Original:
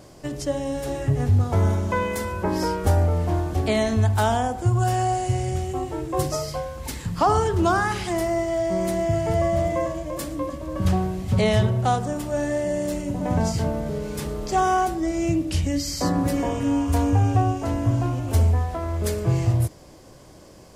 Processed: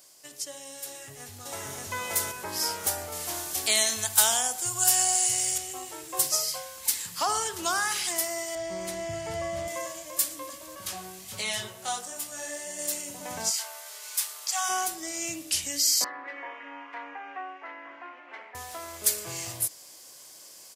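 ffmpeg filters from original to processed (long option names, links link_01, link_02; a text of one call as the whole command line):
ffmpeg -i in.wav -filter_complex "[0:a]asplit=2[link_01][link_02];[link_02]afade=type=in:start_time=0.87:duration=0.01,afade=type=out:start_time=1.73:duration=0.01,aecho=0:1:580|1160|1740|2320|2900|3480:1|0.4|0.16|0.064|0.0256|0.01024[link_03];[link_01][link_03]amix=inputs=2:normalize=0,asettb=1/sr,asplit=3[link_04][link_05][link_06];[link_04]atrim=end=3.124[link_07];[link_05]atrim=start=3.12:end=5.58,asetpts=PTS-STARTPTS,afade=type=in:duration=0.004:curve=qsin,afade=type=out:start_time=2.456:duration=0.004:curve=qsin,highshelf=frequency=3100:gain=8[link_08];[link_06]atrim=start=5.576[link_09];[link_07][link_08]acrossfade=duration=0.004:curve1=hsin:curve2=qsin[link_10];[link_10][link_09]acrossfade=duration=0.004:curve1=qsin:curve2=hsin,asettb=1/sr,asplit=3[link_11][link_12][link_13];[link_11]atrim=end=8.554[link_14];[link_12]atrim=start=8.55:end=9.68,asetpts=PTS-STARTPTS,afade=type=in:duration=0.004:curve=qsin,afade=type=out:start_time=1.126:duration=0.004:curve=qsin,aemphasis=mode=reproduction:type=bsi[link_15];[link_13]atrim=start=9.676[link_16];[link_14][link_15]acrossfade=duration=0.004:curve1=hsin:curve2=qsin[link_17];[link_17][link_16]acrossfade=duration=0.004:curve1=qsin:curve2=hsin,asettb=1/sr,asplit=3[link_18][link_19][link_20];[link_18]atrim=end=10.754[link_21];[link_19]atrim=start=10.75:end=12.79,asetpts=PTS-STARTPTS,afade=type=in:duration=0.004:curve=qsin,afade=type=out:start_time=2.036:duration=0.004:curve=qsin,flanger=delay=17.5:depth=4.1:speed=1.3[link_22];[link_20]atrim=start=12.786[link_23];[link_21][link_22]acrossfade=duration=0.004:curve1=hsin:curve2=qsin[link_24];[link_24][link_23]acrossfade=duration=0.004:curve1=qsin:curve2=hsin,asplit=3[link_25][link_26][link_27];[link_25]afade=type=out:start_time=13.49:duration=0.02[link_28];[link_26]highpass=frequency=770:width=0.5412,highpass=frequency=770:width=1.3066,afade=type=in:start_time=13.49:duration=0.02,afade=type=out:start_time=14.68:duration=0.02[link_29];[link_27]afade=type=in:start_time=14.68:duration=0.02[link_30];[link_28][link_29][link_30]amix=inputs=3:normalize=0,asettb=1/sr,asplit=3[link_31][link_32][link_33];[link_31]atrim=end=16.044[link_34];[link_32]atrim=start=16.04:end=18.55,asetpts=PTS-STARTPTS,afade=type=in:duration=0.004:curve=qsin,afade=type=out:start_time=2.506:duration=0.004:curve=qsin,highpass=frequency=370:width=0.5412,highpass=frequency=370:width=1.3066,equalizer=frequency=450:width_type=q:width=4:gain=-9,equalizer=frequency=660:width_type=q:width=4:gain=-6,equalizer=frequency=2000:width_type=q:width=4:gain=8,lowpass=frequency=2100:width=0.5412,lowpass=frequency=2100:width=1.3066[link_35];[link_33]atrim=start=18.546[link_36];[link_34][link_35]acrossfade=duration=0.004:curve1=hsin:curve2=qsin[link_37];[link_37][link_36]acrossfade=duration=0.004:curve1=qsin:curve2=hsin,aderivative,dynaudnorm=framelen=410:gausssize=9:maxgain=6.5dB,volume=3dB" out.wav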